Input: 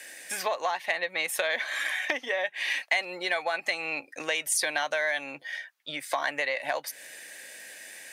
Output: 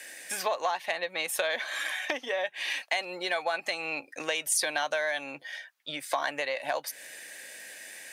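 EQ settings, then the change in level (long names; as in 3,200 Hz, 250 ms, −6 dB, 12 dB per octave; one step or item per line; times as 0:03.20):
dynamic equaliser 2,000 Hz, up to −6 dB, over −44 dBFS, Q 3.4
0.0 dB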